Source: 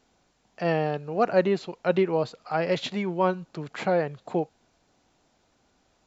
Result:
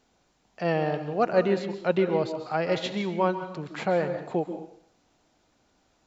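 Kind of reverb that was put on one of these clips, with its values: plate-style reverb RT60 0.59 s, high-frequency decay 0.9×, pre-delay 120 ms, DRR 8.5 dB; trim -1 dB

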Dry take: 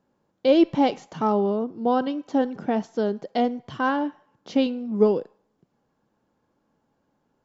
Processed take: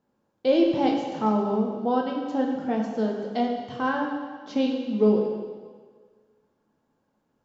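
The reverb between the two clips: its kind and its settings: plate-style reverb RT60 1.6 s, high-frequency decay 0.95×, DRR 0.5 dB; trim -4.5 dB

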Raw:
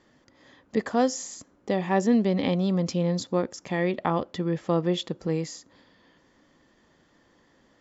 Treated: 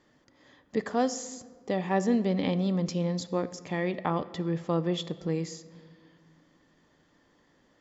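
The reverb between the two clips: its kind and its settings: simulated room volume 2200 m³, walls mixed, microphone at 0.41 m; trim -3.5 dB

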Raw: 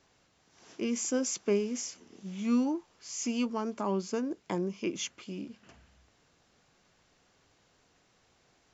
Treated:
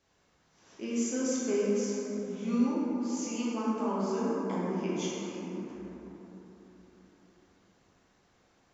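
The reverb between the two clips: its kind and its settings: plate-style reverb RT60 4.1 s, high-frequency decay 0.3×, DRR -8 dB; trim -8 dB

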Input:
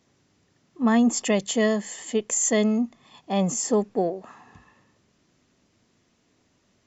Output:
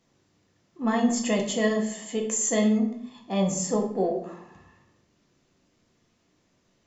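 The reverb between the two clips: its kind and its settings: simulated room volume 130 m³, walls mixed, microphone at 0.79 m; trim -4.5 dB

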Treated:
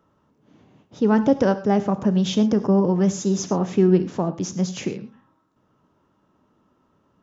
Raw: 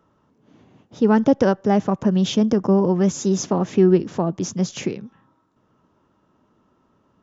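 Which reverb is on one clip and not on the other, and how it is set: gated-style reverb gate 140 ms flat, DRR 11 dB; trim -2 dB

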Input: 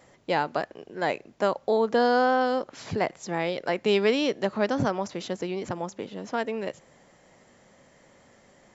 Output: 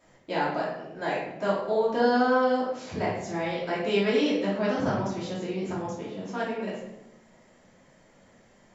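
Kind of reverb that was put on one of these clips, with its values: simulated room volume 280 m³, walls mixed, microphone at 2.8 m; trim -10 dB

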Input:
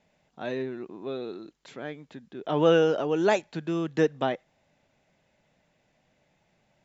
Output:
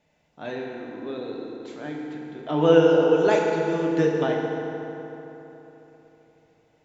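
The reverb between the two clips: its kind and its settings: FDN reverb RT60 3.6 s, high-frequency decay 0.6×, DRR -1.5 dB; trim -1.5 dB

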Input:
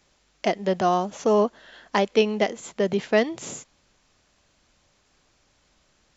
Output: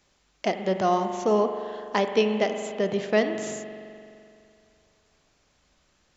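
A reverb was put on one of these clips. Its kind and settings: spring tank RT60 2.5 s, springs 42 ms, chirp 65 ms, DRR 6.5 dB; trim -2.5 dB

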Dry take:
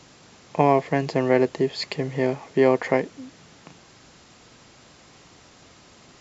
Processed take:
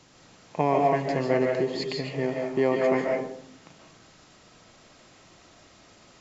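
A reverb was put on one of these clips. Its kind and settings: algorithmic reverb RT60 0.63 s, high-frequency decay 0.5×, pre-delay 105 ms, DRR -0.5 dB; trim -6 dB

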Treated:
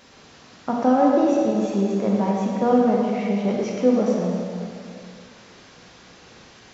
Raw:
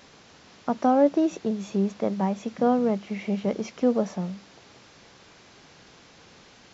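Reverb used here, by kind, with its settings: plate-style reverb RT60 2.4 s, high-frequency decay 0.75×, DRR -3 dB

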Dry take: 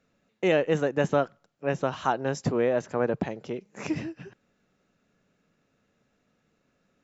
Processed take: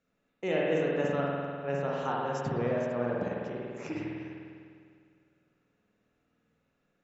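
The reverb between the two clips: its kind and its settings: spring tank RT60 2.2 s, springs 50 ms, chirp 75 ms, DRR -4 dB; trim -9.5 dB

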